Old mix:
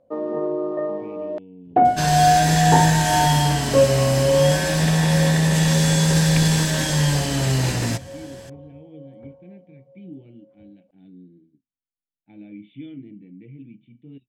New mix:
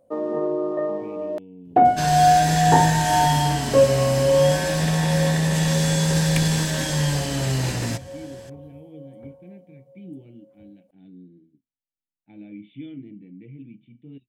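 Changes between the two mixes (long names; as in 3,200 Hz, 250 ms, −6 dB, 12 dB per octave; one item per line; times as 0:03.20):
first sound: remove high-frequency loss of the air 120 metres
second sound −3.0 dB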